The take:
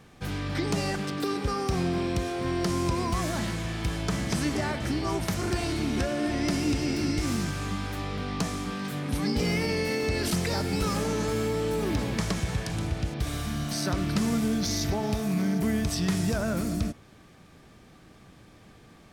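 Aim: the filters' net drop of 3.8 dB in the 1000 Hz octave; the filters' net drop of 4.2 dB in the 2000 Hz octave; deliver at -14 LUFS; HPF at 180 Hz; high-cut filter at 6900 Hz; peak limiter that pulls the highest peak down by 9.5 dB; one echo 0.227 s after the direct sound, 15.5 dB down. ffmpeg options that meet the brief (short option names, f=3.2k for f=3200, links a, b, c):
-af "highpass=180,lowpass=6.9k,equalizer=f=1k:t=o:g=-4,equalizer=f=2k:t=o:g=-4,alimiter=level_in=2dB:limit=-24dB:level=0:latency=1,volume=-2dB,aecho=1:1:227:0.168,volume=20.5dB"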